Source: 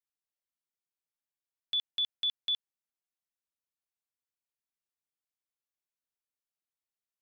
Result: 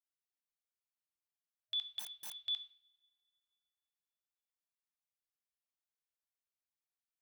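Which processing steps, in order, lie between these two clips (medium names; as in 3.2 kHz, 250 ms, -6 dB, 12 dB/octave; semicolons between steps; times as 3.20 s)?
two-slope reverb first 0.5 s, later 2.5 s, from -27 dB, DRR 9.5 dB; FFT band-reject 110–630 Hz; 1.99–2.40 s: integer overflow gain 34.5 dB; trim -6.5 dB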